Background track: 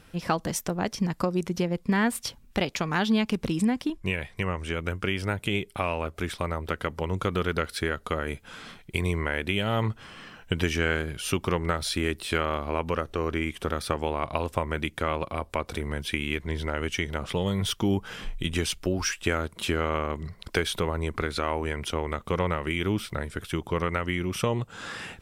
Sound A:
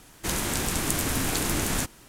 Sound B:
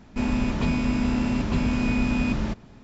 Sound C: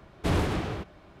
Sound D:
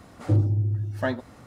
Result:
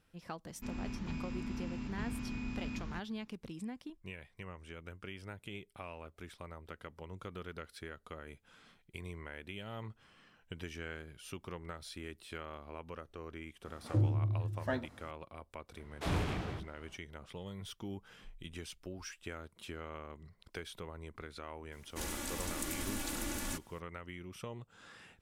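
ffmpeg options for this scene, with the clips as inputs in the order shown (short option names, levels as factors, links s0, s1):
-filter_complex "[0:a]volume=0.119[s0];[2:a]equalizer=f=590:w=1.9:g=-9.5[s1];[3:a]acrossover=split=380[s2][s3];[s2]adelay=40[s4];[s4][s3]amix=inputs=2:normalize=0[s5];[1:a]aecho=1:1:3.5:0.96[s6];[s1]atrim=end=2.83,asetpts=PTS-STARTPTS,volume=0.15,afade=t=in:d=0.004:c=hsin,afade=t=out:st=2.826:d=0.004:c=hsin,adelay=460[s7];[4:a]atrim=end=1.46,asetpts=PTS-STARTPTS,volume=0.355,afade=t=in:d=0.004:c=hsin,afade=t=out:st=1.456:d=0.004:c=hsin,adelay=13650[s8];[s5]atrim=end=1.2,asetpts=PTS-STARTPTS,volume=0.422,afade=t=in:d=0.004:c=hsin,afade=t=out:st=1.196:d=0.004:c=hsin,adelay=15770[s9];[s6]atrim=end=2.08,asetpts=PTS-STARTPTS,volume=0.168,afade=t=in:d=0.004:c=hsin,afade=t=out:st=2.076:d=0.004:c=hsin,adelay=21720[s10];[s0][s7][s8][s9][s10]amix=inputs=5:normalize=0"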